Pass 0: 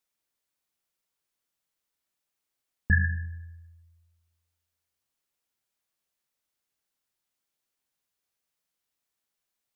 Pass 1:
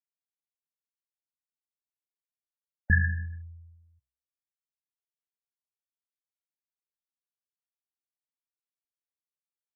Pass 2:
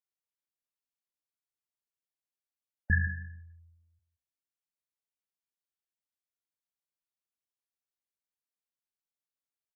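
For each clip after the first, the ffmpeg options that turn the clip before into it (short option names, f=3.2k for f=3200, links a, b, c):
-af "afftfilt=real='re*gte(hypot(re,im),0.01)':imag='im*gte(hypot(re,im),0.01)':win_size=1024:overlap=0.75,bandreject=f=63.94:t=h:w=4,bandreject=f=127.88:t=h:w=4,bandreject=f=191.82:t=h:w=4"
-af "aecho=1:1:173:0.158,volume=-4dB"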